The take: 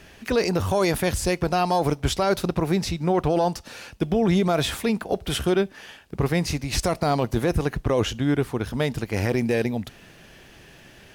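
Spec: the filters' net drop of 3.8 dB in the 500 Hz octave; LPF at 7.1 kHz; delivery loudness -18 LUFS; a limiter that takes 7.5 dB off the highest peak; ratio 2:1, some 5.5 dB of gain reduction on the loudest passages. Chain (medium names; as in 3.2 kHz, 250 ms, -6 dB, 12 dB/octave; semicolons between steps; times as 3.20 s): low-pass 7.1 kHz; peaking EQ 500 Hz -5 dB; compression 2:1, threshold -29 dBFS; trim +15.5 dB; peak limiter -8 dBFS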